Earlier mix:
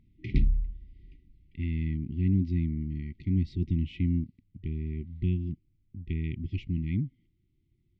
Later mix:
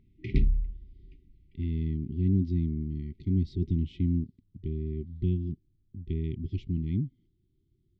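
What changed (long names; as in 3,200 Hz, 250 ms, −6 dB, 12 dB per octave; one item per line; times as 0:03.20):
speech: add flat-topped bell 2,100 Hz −11 dB 1 octave
master: add parametric band 400 Hz +9 dB 0.22 octaves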